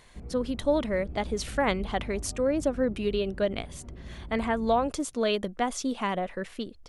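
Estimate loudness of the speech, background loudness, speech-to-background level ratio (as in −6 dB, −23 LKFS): −29.0 LKFS, −43.0 LKFS, 14.0 dB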